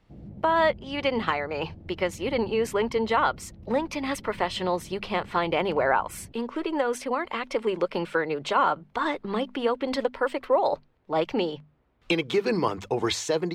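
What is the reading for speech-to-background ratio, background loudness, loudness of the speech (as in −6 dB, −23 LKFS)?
19.5 dB, −46.5 LKFS, −27.0 LKFS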